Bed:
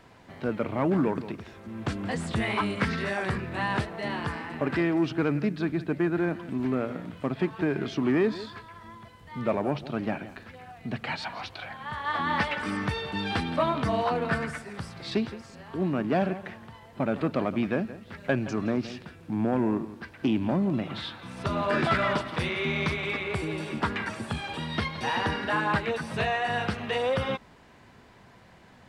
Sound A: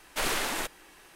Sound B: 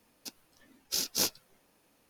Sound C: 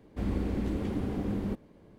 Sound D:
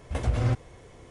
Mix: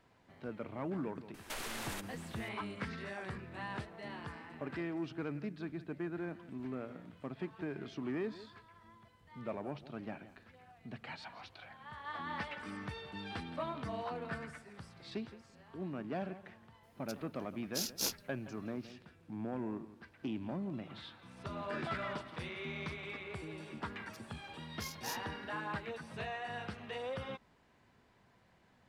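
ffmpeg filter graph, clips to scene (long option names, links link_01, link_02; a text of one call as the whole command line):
ffmpeg -i bed.wav -i cue0.wav -i cue1.wav -filter_complex "[2:a]asplit=2[link_01][link_02];[0:a]volume=-14dB[link_03];[1:a]acompressor=threshold=-36dB:ratio=6:attack=3.2:release=140:knee=1:detection=peak,atrim=end=1.15,asetpts=PTS-STARTPTS,volume=-2.5dB,afade=type=in:duration=0.004:curve=hsin,afade=type=out:start_time=1.146:duration=0.004:curve=hsin,adelay=1340[link_04];[link_01]atrim=end=2.09,asetpts=PTS-STARTPTS,volume=-6.5dB,afade=type=in:duration=0.004:curve=hsin,afade=type=out:start_time=2.086:duration=0.004:curve=hsin,adelay=16830[link_05];[link_02]atrim=end=2.09,asetpts=PTS-STARTPTS,volume=-15.5dB,afade=type=in:duration=0.004:curve=hsin,afade=type=out:start_time=2.086:duration=0.004:curve=hsin,adelay=23880[link_06];[link_03][link_04][link_05][link_06]amix=inputs=4:normalize=0" out.wav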